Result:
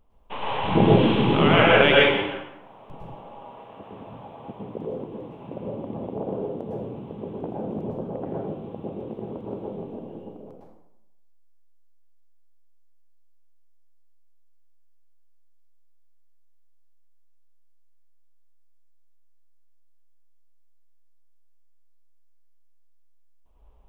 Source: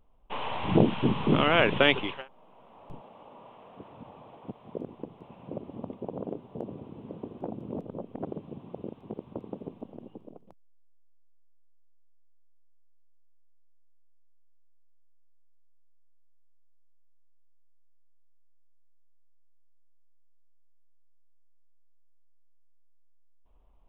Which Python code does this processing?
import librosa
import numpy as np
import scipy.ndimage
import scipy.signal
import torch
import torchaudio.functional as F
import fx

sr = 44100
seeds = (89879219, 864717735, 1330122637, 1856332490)

y = fx.high_shelf(x, sr, hz=3400.0, db=11.0, at=(0.85, 1.25))
y = fx.rev_plate(y, sr, seeds[0], rt60_s=0.87, hf_ratio=0.75, predelay_ms=95, drr_db=-4.5)
y = y * librosa.db_to_amplitude(1.0)